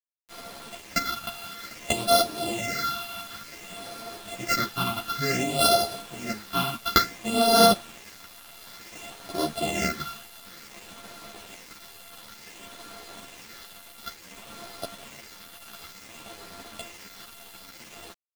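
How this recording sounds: a buzz of ramps at a fixed pitch in blocks of 64 samples; phasing stages 6, 0.56 Hz, lowest notch 500–2200 Hz; a quantiser's noise floor 8-bit, dither none; a shimmering, thickened sound

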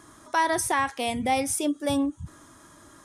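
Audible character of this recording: noise floor -53 dBFS; spectral tilt -3.0 dB/octave

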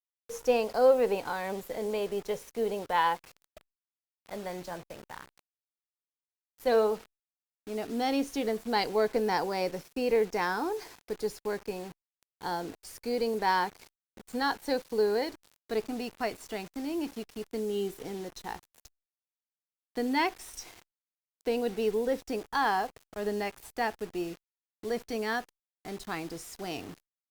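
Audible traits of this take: a quantiser's noise floor 8-bit, dither none; Opus

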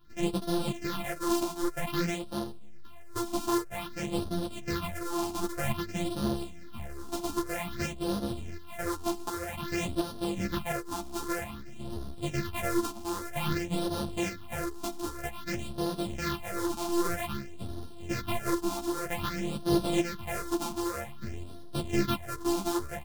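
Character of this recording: a buzz of ramps at a fixed pitch in blocks of 128 samples; phasing stages 6, 0.52 Hz, lowest notch 130–2200 Hz; tremolo saw up 1.4 Hz, depth 45%; a shimmering, thickened sound

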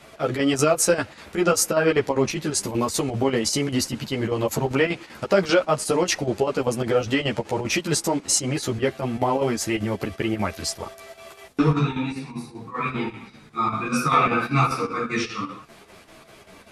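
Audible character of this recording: chopped level 5.1 Hz, depth 60%, duty 75%; a shimmering, thickened sound

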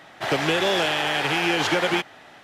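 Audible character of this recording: noise floor -48 dBFS; spectral tilt -3.5 dB/octave

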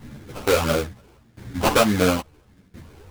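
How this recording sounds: tremolo saw down 0.73 Hz, depth 90%; phasing stages 12, 1.6 Hz, lowest notch 190–1700 Hz; aliases and images of a low sample rate 1.9 kHz, jitter 20%; a shimmering, thickened sound

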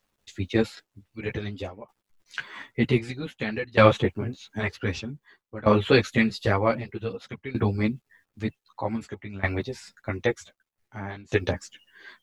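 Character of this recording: a quantiser's noise floor 12-bit, dither none; tremolo saw down 0.53 Hz, depth 90%; a shimmering, thickened sound

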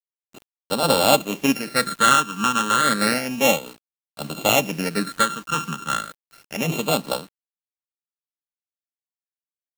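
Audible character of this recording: a buzz of ramps at a fixed pitch in blocks of 32 samples; phasing stages 8, 0.31 Hz, lowest notch 620–2000 Hz; a quantiser's noise floor 8-bit, dither none; random flutter of the level

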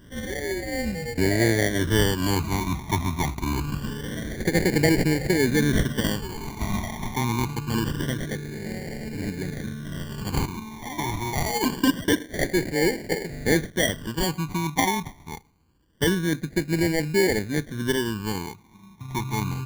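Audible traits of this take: aliases and images of a low sample rate 1.3 kHz, jitter 0%; phasing stages 12, 0.25 Hz, lowest notch 500–1100 Hz

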